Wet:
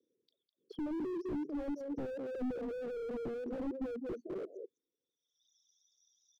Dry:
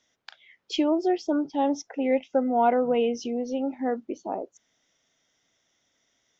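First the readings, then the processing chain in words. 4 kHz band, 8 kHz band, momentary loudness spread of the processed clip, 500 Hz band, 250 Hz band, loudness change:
below −20 dB, can't be measured, 5 LU, −13.5 dB, −12.0 dB, −13.5 dB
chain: spectral envelope exaggerated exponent 2
Chebyshev band-stop filter 500–3,600 Hz, order 4
reverb reduction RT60 1.5 s
gate on every frequency bin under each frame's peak −30 dB strong
in parallel at −8 dB: gain into a clipping stage and back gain 34 dB
on the sum: band-pass filter sweep 380 Hz → 4,800 Hz, 0:04.98–0:05.50
on a send: single-tap delay 204 ms −9.5 dB
on the sum: slew-rate limiting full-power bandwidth 3.6 Hz
level +3.5 dB

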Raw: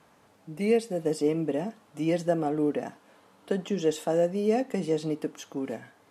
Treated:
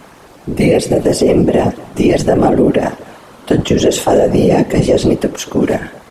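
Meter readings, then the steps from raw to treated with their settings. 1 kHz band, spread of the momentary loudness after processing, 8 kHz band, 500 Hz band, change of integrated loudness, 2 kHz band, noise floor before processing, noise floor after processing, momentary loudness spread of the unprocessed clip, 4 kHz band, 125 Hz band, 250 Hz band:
+17.0 dB, 7 LU, +19.5 dB, +15.0 dB, +15.5 dB, +16.5 dB, −61 dBFS, −40 dBFS, 10 LU, +19.0 dB, +19.0 dB, +16.5 dB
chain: slap from a distant wall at 40 metres, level −22 dB
random phases in short frames
boost into a limiter +21.5 dB
level −1 dB

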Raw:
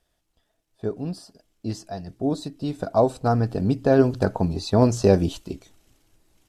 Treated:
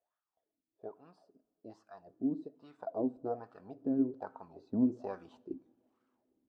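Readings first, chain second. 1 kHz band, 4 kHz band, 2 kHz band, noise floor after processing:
−18.5 dB, below −30 dB, below −20 dB, below −85 dBFS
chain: LFO wah 1.2 Hz 240–1,300 Hz, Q 5.4
speech leveller within 4 dB 2 s
coupled-rooms reverb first 0.5 s, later 3.1 s, from −18 dB, DRR 18.5 dB
level −5 dB

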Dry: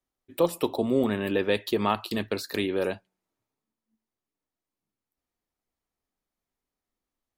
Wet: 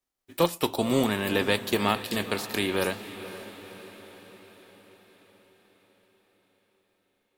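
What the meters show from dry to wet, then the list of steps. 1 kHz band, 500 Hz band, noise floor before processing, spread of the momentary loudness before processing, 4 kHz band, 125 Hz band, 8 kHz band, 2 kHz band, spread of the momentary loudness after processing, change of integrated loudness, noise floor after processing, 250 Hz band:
+1.5 dB, −1.0 dB, below −85 dBFS, 6 LU, +5.0 dB, +2.5 dB, +7.0 dB, +4.5 dB, 18 LU, +0.5 dB, −75 dBFS, 0.0 dB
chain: spectral envelope flattened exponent 0.6
feedback delay with all-pass diffusion 510 ms, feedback 58%, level −13.5 dB

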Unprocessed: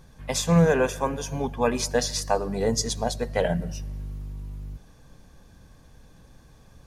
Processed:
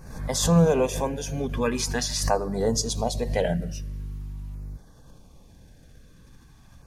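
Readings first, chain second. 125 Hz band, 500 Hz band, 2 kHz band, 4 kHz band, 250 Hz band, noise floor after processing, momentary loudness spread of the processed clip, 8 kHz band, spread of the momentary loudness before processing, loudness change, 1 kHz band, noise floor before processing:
+1.0 dB, −0.5 dB, −3.0 dB, +0.5 dB, +0.5 dB, −52 dBFS, 18 LU, +1.0 dB, 18 LU, 0.0 dB, −1.5 dB, −53 dBFS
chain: auto-filter notch saw down 0.44 Hz 410–3,500 Hz
background raised ahead of every attack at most 67 dB per second

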